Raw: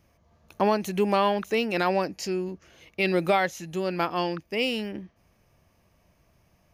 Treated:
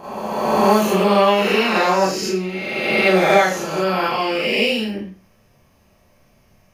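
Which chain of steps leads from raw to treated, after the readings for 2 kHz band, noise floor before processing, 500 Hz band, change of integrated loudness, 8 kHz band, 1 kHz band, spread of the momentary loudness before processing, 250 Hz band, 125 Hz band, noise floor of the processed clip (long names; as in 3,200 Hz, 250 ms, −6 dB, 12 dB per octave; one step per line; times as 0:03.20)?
+11.0 dB, −66 dBFS, +9.0 dB, +9.0 dB, +12.0 dB, +9.5 dB, 11 LU, +8.5 dB, +7.0 dB, −56 dBFS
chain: peak hold with a rise ahead of every peak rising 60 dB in 1.88 s
four-comb reverb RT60 0.36 s, combs from 29 ms, DRR −7.5 dB
level −3 dB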